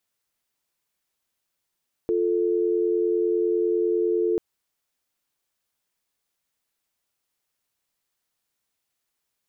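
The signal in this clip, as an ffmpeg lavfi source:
ffmpeg -f lavfi -i "aevalsrc='0.075*(sin(2*PI*350*t)+sin(2*PI*440*t))':duration=2.29:sample_rate=44100" out.wav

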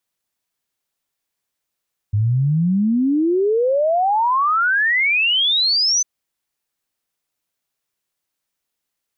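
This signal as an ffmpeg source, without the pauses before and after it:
ffmpeg -f lavfi -i "aevalsrc='0.2*clip(min(t,3.9-t)/0.01,0,1)*sin(2*PI*100*3.9/log(6200/100)*(exp(log(6200/100)*t/3.9)-1))':duration=3.9:sample_rate=44100" out.wav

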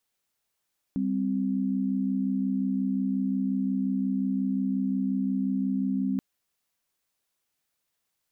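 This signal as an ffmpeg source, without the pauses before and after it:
ffmpeg -f lavfi -i "aevalsrc='0.0447*(sin(2*PI*196*t)+sin(2*PI*261.63*t))':duration=5.23:sample_rate=44100" out.wav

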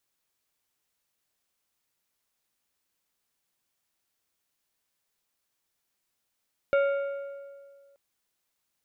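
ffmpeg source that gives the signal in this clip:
ffmpeg -f lavfi -i "aevalsrc='0.112*pow(10,-3*t/1.9)*sin(2*PI*558*t)+0.0422*pow(10,-3*t/1.443)*sin(2*PI*1395*t)+0.0158*pow(10,-3*t/1.254)*sin(2*PI*2232*t)+0.00596*pow(10,-3*t/1.172)*sin(2*PI*2790*t)+0.00224*pow(10,-3*t/1.084)*sin(2*PI*3627*t)':duration=1.23:sample_rate=44100" out.wav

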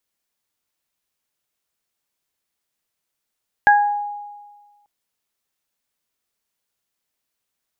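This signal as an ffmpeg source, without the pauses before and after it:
ffmpeg -f lavfi -i "aevalsrc='0.355*pow(10,-3*t/1.47)*sin(2*PI*824*t)+0.355*pow(10,-3*t/0.4)*sin(2*PI*1648*t)':duration=1.19:sample_rate=44100" out.wav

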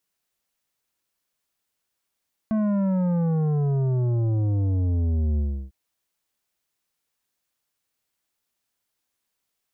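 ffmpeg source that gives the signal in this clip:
ffmpeg -f lavfi -i "aevalsrc='0.0891*clip((3.2-t)/0.33,0,1)*tanh(3.16*sin(2*PI*220*3.2/log(65/220)*(exp(log(65/220)*t/3.2)-1)))/tanh(3.16)':duration=3.2:sample_rate=44100" out.wav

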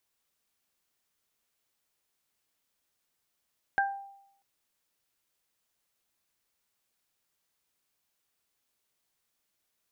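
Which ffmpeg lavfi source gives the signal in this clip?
ffmpeg -f lavfi -i "aevalsrc='0.0668*pow(10,-3*t/0.78)*sin(2*PI*792*t)+0.0841*pow(10,-3*t/0.26)*sin(2*PI*1584*t)':duration=0.64:sample_rate=44100" out.wav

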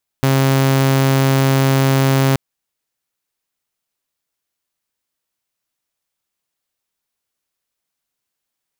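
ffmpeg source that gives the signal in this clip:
ffmpeg -f lavfi -i "aevalsrc='0.355*(2*mod(135*t,1)-1)':duration=2.13:sample_rate=44100" out.wav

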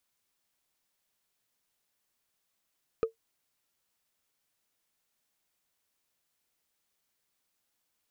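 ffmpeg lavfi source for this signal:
ffmpeg -f lavfi -i "aevalsrc='0.112*pow(10,-3*t/0.12)*sin(2*PI*451*t)+0.0355*pow(10,-3*t/0.036)*sin(2*PI*1243.4*t)+0.0112*pow(10,-3*t/0.016)*sin(2*PI*2437.2*t)+0.00355*pow(10,-3*t/0.009)*sin(2*PI*4028.8*t)+0.00112*pow(10,-3*t/0.005)*sin(2*PI*6016.3*t)':duration=0.45:sample_rate=44100" out.wav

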